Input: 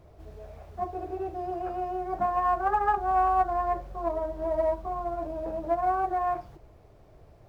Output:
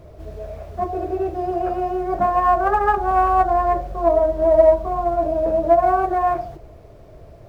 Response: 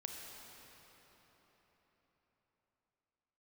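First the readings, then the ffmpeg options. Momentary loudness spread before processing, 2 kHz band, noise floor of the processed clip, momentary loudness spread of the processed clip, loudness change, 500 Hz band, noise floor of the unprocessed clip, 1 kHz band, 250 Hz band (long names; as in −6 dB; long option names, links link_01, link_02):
11 LU, +8.5 dB, −44 dBFS, 12 LU, +10.0 dB, +13.0 dB, −55 dBFS, +8.0 dB, +11.0 dB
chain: -filter_complex "[0:a]asplit=2[link_01][link_02];[link_02]lowpass=frequency=680:width_type=q:width=7.3[link_03];[1:a]atrim=start_sample=2205,afade=type=out:start_time=0.19:duration=0.01,atrim=end_sample=8820[link_04];[link_03][link_04]afir=irnorm=-1:irlink=0,volume=-11dB[link_05];[link_01][link_05]amix=inputs=2:normalize=0,volume=9dB"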